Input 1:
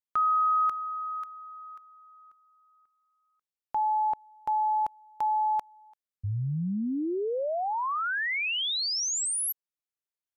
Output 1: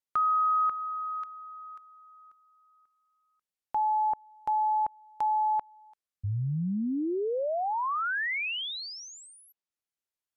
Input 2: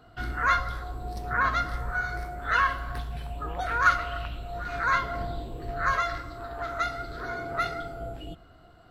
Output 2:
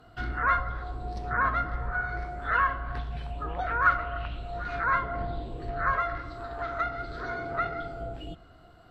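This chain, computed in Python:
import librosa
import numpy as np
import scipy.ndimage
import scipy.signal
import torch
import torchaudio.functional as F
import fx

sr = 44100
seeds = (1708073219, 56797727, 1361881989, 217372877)

y = fx.env_lowpass_down(x, sr, base_hz=1800.0, full_db=-25.5)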